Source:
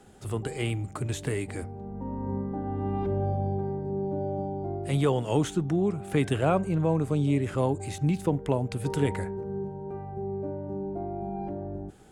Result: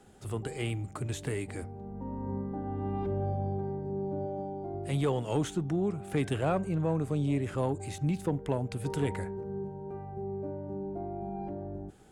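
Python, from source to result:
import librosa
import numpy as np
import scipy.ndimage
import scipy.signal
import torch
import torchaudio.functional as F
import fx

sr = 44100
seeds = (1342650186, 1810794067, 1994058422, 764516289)

y = fx.peak_eq(x, sr, hz=89.0, db=-7.5, octaves=1.7, at=(4.26, 4.74))
y = 10.0 ** (-14.5 / 20.0) * np.tanh(y / 10.0 ** (-14.5 / 20.0))
y = F.gain(torch.from_numpy(y), -3.5).numpy()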